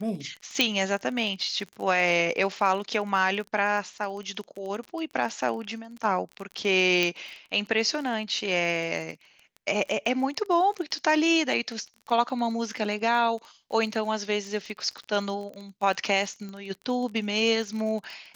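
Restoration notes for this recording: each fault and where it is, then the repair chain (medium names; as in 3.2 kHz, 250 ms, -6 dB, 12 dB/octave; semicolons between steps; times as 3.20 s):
crackle 29 per s -34 dBFS
0.61 s: pop -7 dBFS
7.03 s: pop -13 dBFS
16.49 s: pop -27 dBFS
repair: de-click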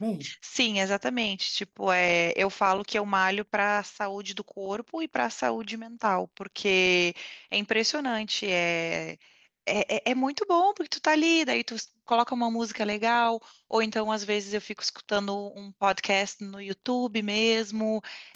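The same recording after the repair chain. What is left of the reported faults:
nothing left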